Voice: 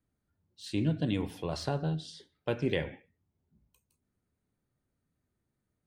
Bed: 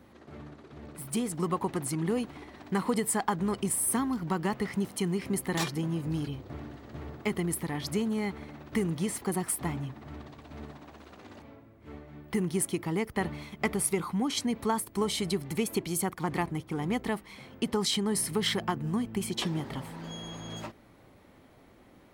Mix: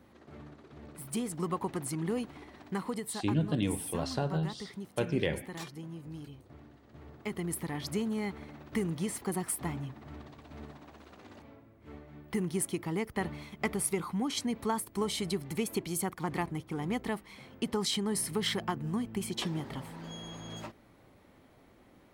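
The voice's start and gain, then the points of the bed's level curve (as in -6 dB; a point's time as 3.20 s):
2.50 s, 0.0 dB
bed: 2.58 s -3.5 dB
3.28 s -12 dB
6.85 s -12 dB
7.59 s -3 dB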